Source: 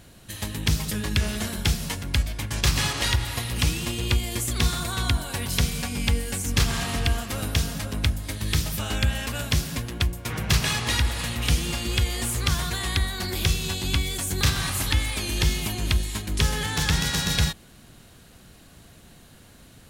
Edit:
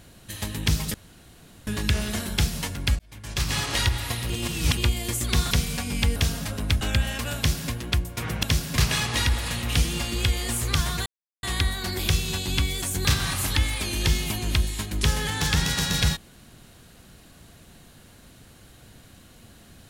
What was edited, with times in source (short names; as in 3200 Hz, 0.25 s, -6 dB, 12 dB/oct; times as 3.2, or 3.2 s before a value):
0.94 insert room tone 0.73 s
2.26–2.98 fade in
3.57–4.04 reverse
4.78–5.56 cut
6.21–7.5 cut
8.15–8.89 cut
9.45–9.8 copy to 10.51
12.79 insert silence 0.37 s